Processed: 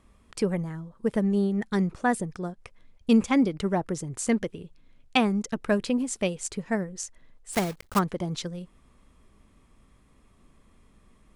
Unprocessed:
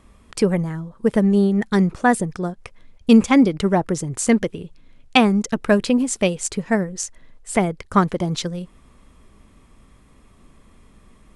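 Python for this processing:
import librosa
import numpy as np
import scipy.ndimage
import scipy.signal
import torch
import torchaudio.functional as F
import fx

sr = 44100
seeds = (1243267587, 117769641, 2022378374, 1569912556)

y = fx.block_float(x, sr, bits=3, at=(7.52, 7.98), fade=0.02)
y = y * librosa.db_to_amplitude(-8.0)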